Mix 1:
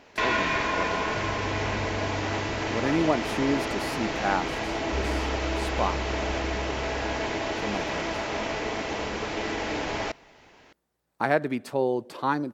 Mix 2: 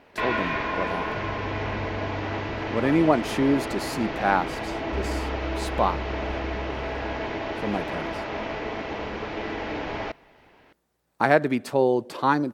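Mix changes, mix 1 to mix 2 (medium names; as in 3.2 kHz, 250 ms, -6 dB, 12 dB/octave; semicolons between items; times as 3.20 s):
speech +4.5 dB; first sound: add distance through air 210 m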